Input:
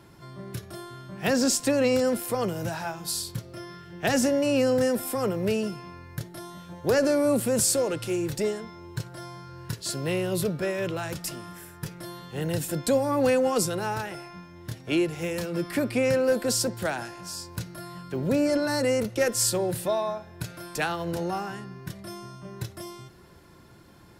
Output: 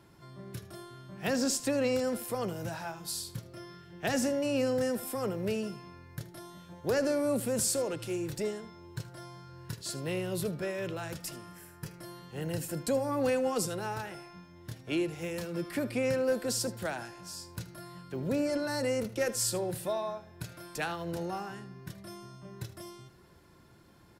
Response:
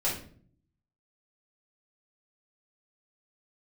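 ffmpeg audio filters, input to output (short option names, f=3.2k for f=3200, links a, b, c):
-filter_complex "[0:a]asettb=1/sr,asplit=3[a][b][c];[a]atrim=end=11.354[d];[b]atrim=start=11.35:end=13.12,asetpts=PTS-STARTPTS,afade=t=in:d=0.004:c=qsin,afade=t=out:st=1.766:d=0.004:c=qsin,bandreject=f=3.6k:w=8.7[e];[c]atrim=start=13.116[f];[d][e]acrossfade=d=0.004:c1=hsin:c2=qsin[g];[g][f]acrossfade=d=0.004:c1=qsin:c2=hsin,aecho=1:1:77:0.15,volume=-6.5dB"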